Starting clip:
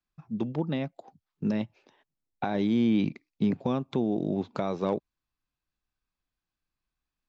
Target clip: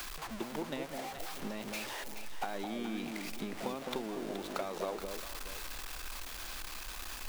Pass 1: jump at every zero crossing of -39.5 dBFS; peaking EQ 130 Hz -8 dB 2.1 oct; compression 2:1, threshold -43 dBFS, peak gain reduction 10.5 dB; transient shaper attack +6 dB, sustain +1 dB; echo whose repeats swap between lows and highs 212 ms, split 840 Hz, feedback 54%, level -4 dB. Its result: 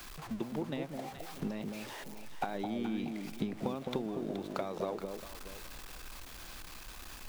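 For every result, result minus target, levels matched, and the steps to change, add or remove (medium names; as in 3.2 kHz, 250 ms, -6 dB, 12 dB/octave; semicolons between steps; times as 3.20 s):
125 Hz band +6.0 dB; jump at every zero crossing: distortion -7 dB
change: peaking EQ 130 Hz -19 dB 2.1 oct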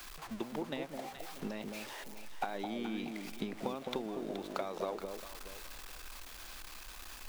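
jump at every zero crossing: distortion -7 dB
change: jump at every zero crossing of -31 dBFS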